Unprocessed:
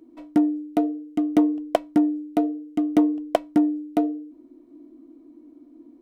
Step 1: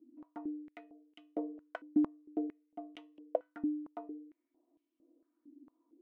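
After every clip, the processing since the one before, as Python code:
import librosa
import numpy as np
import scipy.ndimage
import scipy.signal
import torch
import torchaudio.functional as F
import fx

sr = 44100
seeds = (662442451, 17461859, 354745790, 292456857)

y = fx.comb_fb(x, sr, f0_hz=500.0, decay_s=0.26, harmonics='all', damping=0.0, mix_pct=50)
y = fx.filter_held_bandpass(y, sr, hz=4.4, low_hz=270.0, high_hz=2900.0)
y = y * librosa.db_to_amplitude(-1.5)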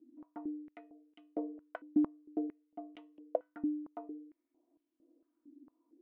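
y = fx.lowpass(x, sr, hz=1700.0, slope=6)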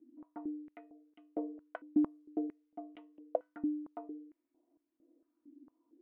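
y = fx.env_lowpass(x, sr, base_hz=2000.0, full_db=-31.5)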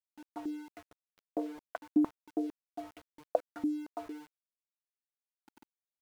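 y = np.where(np.abs(x) >= 10.0 ** (-51.0 / 20.0), x, 0.0)
y = fx.dynamic_eq(y, sr, hz=990.0, q=0.84, threshold_db=-54.0, ratio=4.0, max_db=5)
y = y * librosa.db_to_amplitude(1.5)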